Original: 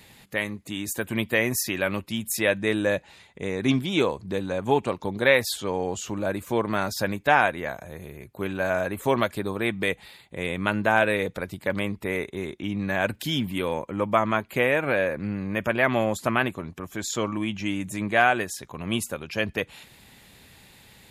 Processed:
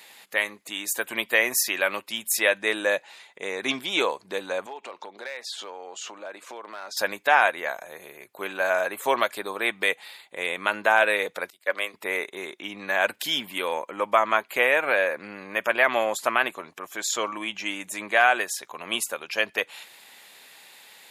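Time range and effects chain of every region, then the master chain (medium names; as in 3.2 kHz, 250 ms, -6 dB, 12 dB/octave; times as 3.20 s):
4.66–6.97 s: compression 10:1, threshold -32 dBFS + band-pass 250–6100 Hz + hard clipper -28.5 dBFS
11.50–11.94 s: high-pass 420 Hz + peaking EQ 870 Hz -10 dB 0.22 oct + three bands expanded up and down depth 100%
whole clip: high-pass 610 Hz 12 dB/octave; loudness maximiser +9.5 dB; trim -5.5 dB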